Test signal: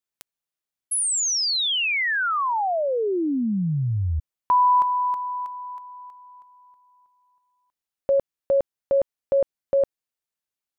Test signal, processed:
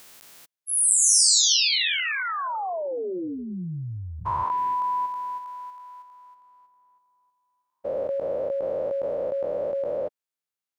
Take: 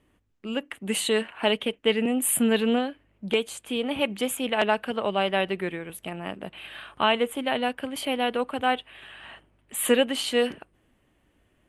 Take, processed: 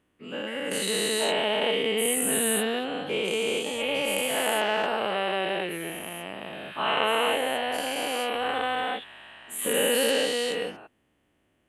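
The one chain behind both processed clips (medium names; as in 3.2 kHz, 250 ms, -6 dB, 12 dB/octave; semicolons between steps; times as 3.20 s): every event in the spectrogram widened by 480 ms; high-pass 120 Hz 6 dB/octave; dynamic bell 240 Hz, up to -4 dB, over -33 dBFS, Q 3.5; trim -8.5 dB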